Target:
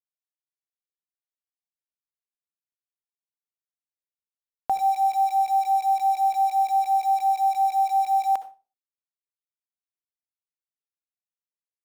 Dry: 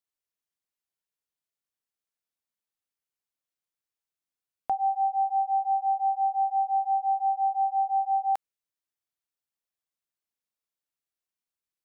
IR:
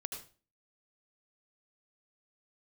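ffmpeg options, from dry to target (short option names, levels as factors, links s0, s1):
-filter_complex "[0:a]aeval=exprs='val(0)*gte(abs(val(0)),0.0133)':c=same,asplit=2[s0][s1];[1:a]atrim=start_sample=2205,asetrate=52920,aresample=44100[s2];[s1][s2]afir=irnorm=-1:irlink=0,volume=0.75[s3];[s0][s3]amix=inputs=2:normalize=0"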